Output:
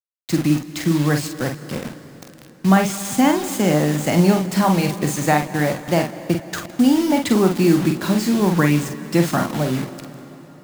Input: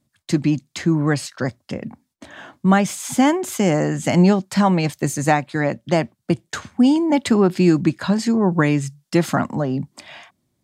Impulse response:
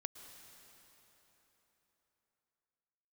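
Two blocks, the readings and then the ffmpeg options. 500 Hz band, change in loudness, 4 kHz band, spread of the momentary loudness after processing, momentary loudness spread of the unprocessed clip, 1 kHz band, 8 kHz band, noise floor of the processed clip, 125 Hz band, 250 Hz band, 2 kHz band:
0.0 dB, +0.5 dB, +2.5 dB, 10 LU, 10 LU, +0.5 dB, +2.0 dB, -44 dBFS, +0.5 dB, +0.5 dB, +0.5 dB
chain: -filter_complex "[0:a]acrusher=bits=4:mix=0:aa=0.000001,asplit=2[s0][s1];[1:a]atrim=start_sample=2205,adelay=47[s2];[s1][s2]afir=irnorm=-1:irlink=0,volume=0.794[s3];[s0][s3]amix=inputs=2:normalize=0,volume=0.891"

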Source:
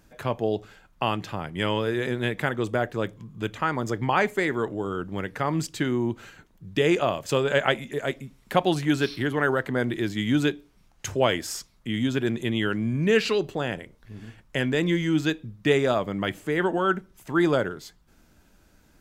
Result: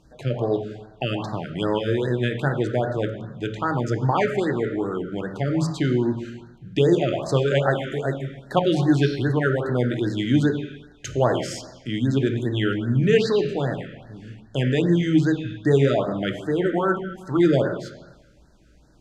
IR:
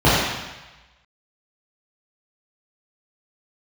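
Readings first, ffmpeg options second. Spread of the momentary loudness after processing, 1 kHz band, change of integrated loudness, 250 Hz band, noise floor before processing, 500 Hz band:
12 LU, 0.0 dB, +3.0 dB, +4.0 dB, -60 dBFS, +3.0 dB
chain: -filter_complex "[0:a]lowpass=7100,asplit=2[s0][s1];[1:a]atrim=start_sample=2205[s2];[s1][s2]afir=irnorm=-1:irlink=0,volume=0.0299[s3];[s0][s3]amix=inputs=2:normalize=0,afftfilt=real='re*(1-between(b*sr/1024,840*pow(2800/840,0.5+0.5*sin(2*PI*2.5*pts/sr))/1.41,840*pow(2800/840,0.5+0.5*sin(2*PI*2.5*pts/sr))*1.41))':imag='im*(1-between(b*sr/1024,840*pow(2800/840,0.5+0.5*sin(2*PI*2.5*pts/sr))/1.41,840*pow(2800/840,0.5+0.5*sin(2*PI*2.5*pts/sr))*1.41))':win_size=1024:overlap=0.75"

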